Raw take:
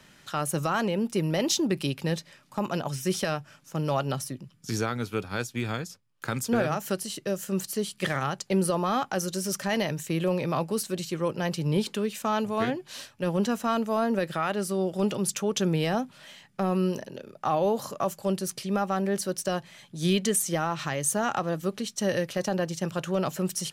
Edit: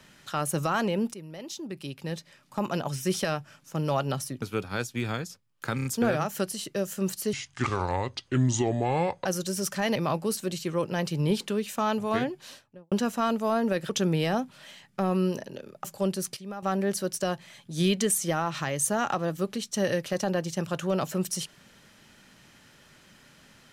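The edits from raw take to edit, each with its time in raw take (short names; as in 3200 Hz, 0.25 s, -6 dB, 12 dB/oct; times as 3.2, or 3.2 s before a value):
1.14–2.61 fade in quadratic, from -16 dB
4.42–5.02 cut
6.36 stutter 0.03 s, 4 plays
7.84–9.13 speed 67%
9.83–10.42 cut
12.76–13.38 studio fade out
14.36–15.5 cut
17.45–18.09 cut
18.61–18.87 gain -11 dB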